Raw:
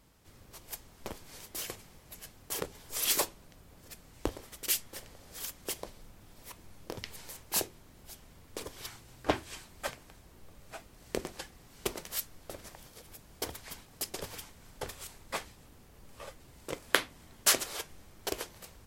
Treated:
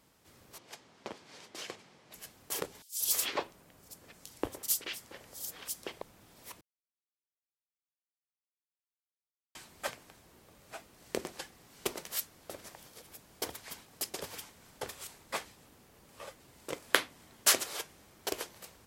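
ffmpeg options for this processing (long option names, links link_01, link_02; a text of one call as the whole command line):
ffmpeg -i in.wav -filter_complex "[0:a]asettb=1/sr,asplit=3[link_01][link_02][link_03];[link_01]atrim=end=0.584[link_04];[link_02]atrim=start=0.58:end=2.14,asetpts=PTS-STARTPTS,afade=type=in:duration=0.004:curve=qsin,afade=type=out:start_time=1.556:duration=0.004:curve=qsin,highpass=130,lowpass=5200[link_05];[link_03]atrim=start=2.136[link_06];[link_04][link_05]acrossfade=duration=0.004:curve1=hsin:curve2=qsin[link_07];[link_07][link_06]acrossfade=duration=0.004:curve1=qsin:curve2=hsin,asettb=1/sr,asplit=3[link_08][link_09][link_10];[link_08]atrim=end=2.824[link_11];[link_09]atrim=start=2.82:end=6.02,asetpts=PTS-STARTPTS,afade=type=in:duration=0.004:curve=qsin,afade=type=out:start_time=3.196:duration=0.004:curve=qsin,acrossover=split=3800[link_12][link_13];[link_12]adelay=180[link_14];[link_14][link_13]amix=inputs=2:normalize=0,atrim=end_sample=141120[link_15];[link_10]atrim=start=6.016[link_16];[link_11][link_15]acrossfade=duration=0.004:curve1=hsin:curve2=qsin[link_17];[link_17][link_16]acrossfade=duration=0.004:curve1=qsin:curve2=hsin,asplit=3[link_18][link_19][link_20];[link_18]atrim=end=6.61,asetpts=PTS-STARTPTS,afade=type=out:start_time=6.606:duration=0.004:curve=hsin[link_21];[link_19]atrim=start=6.61:end=9.55,asetpts=PTS-STARTPTS,volume=0[link_22];[link_20]atrim=start=9.55,asetpts=PTS-STARTPTS,afade=type=in:duration=0.004:curve=hsin[link_23];[link_21][link_22][link_23]concat=n=3:v=0:a=1,highpass=frequency=190:poles=1" out.wav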